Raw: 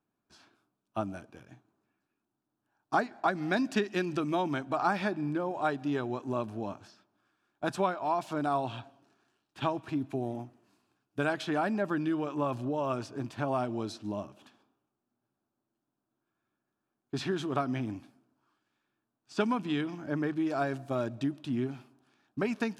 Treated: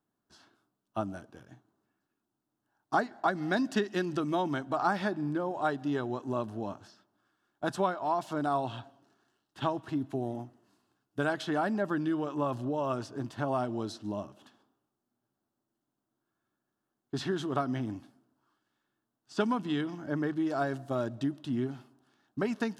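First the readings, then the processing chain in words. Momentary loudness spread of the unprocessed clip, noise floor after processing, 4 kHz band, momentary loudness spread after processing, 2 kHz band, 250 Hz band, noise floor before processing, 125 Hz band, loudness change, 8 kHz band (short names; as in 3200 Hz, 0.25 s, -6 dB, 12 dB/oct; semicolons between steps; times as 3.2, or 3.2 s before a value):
9 LU, -85 dBFS, -0.5 dB, 9 LU, -0.5 dB, 0.0 dB, -85 dBFS, 0.0 dB, 0.0 dB, 0.0 dB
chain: notch 2400 Hz, Q 5.4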